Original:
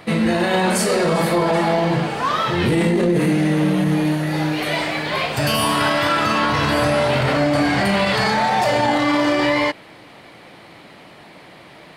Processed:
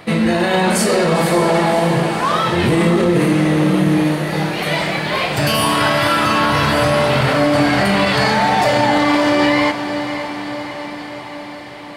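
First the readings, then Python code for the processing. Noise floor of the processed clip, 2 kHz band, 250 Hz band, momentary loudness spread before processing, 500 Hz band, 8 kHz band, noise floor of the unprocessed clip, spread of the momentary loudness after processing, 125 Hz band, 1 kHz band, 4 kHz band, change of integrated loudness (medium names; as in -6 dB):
-31 dBFS, +3.0 dB, +3.0 dB, 4 LU, +3.0 dB, +3.0 dB, -43 dBFS, 11 LU, +3.0 dB, +3.0 dB, +3.0 dB, +3.0 dB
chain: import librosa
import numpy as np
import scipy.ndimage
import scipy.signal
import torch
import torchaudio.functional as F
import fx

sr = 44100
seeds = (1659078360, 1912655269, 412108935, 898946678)

y = fx.echo_diffused(x, sr, ms=557, feedback_pct=66, wet_db=-10)
y = y * 10.0 ** (2.5 / 20.0)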